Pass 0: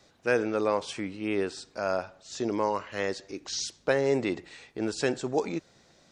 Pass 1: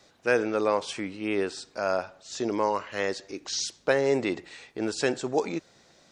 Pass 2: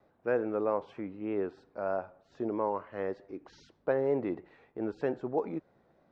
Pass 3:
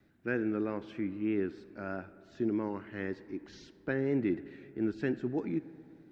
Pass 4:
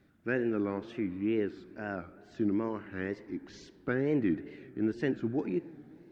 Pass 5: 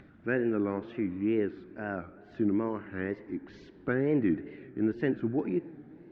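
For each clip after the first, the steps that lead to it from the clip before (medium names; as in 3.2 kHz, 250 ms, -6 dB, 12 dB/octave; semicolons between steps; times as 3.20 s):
bass shelf 210 Hz -5.5 dB; trim +2.5 dB
low-pass 1.1 kHz 12 dB/octave; vibrato 3.2 Hz 44 cents; trim -4.5 dB
high-order bell 730 Hz -15.5 dB; reverberation RT60 3.3 s, pre-delay 10 ms, DRR 17.5 dB; trim +5 dB
wow and flutter 140 cents; trim +1.5 dB
low-pass 2.6 kHz 12 dB/octave; upward compressor, threshold -48 dBFS; trim +2 dB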